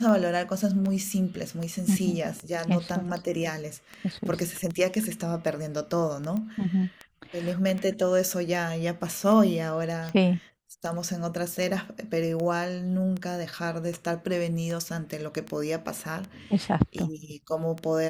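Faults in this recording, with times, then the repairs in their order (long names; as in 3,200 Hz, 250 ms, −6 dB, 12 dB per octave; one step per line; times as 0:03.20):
scratch tick 78 rpm
0:06.37: click −21 dBFS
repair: click removal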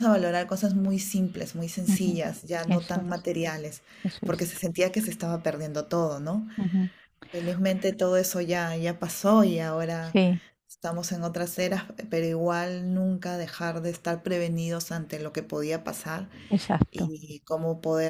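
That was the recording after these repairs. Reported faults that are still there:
none of them is left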